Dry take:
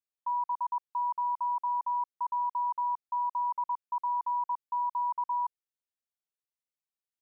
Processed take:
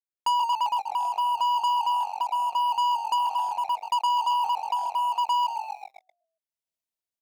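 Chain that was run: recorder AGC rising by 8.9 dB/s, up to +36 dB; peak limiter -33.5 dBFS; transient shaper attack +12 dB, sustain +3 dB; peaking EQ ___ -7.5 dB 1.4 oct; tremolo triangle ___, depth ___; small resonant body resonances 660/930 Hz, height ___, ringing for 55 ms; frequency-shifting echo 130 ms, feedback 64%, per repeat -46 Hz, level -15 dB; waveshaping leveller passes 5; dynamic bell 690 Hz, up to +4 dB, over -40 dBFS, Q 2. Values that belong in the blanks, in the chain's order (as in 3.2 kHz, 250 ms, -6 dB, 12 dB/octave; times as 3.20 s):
1.1 kHz, 0.78 Hz, 80%, 12 dB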